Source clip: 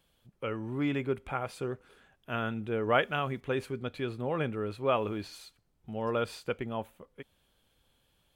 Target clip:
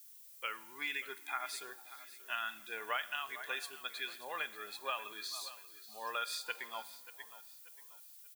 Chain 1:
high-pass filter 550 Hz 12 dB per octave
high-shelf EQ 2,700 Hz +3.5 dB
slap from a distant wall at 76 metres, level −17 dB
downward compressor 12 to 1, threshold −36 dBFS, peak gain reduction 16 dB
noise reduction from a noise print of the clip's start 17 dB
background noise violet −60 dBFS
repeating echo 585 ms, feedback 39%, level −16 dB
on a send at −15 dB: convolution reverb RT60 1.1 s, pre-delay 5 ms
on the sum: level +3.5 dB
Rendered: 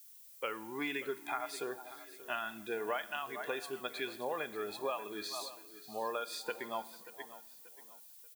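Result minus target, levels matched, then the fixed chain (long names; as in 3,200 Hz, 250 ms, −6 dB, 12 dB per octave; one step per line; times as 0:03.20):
500 Hz band +9.5 dB
high-pass filter 1,500 Hz 12 dB per octave
high-shelf EQ 2,700 Hz +3.5 dB
slap from a distant wall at 76 metres, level −17 dB
downward compressor 12 to 1, threshold −36 dBFS, peak gain reduction 12 dB
noise reduction from a noise print of the clip's start 17 dB
background noise violet −60 dBFS
repeating echo 585 ms, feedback 39%, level −16 dB
on a send at −15 dB: convolution reverb RT60 1.1 s, pre-delay 5 ms
on the sum: level +3.5 dB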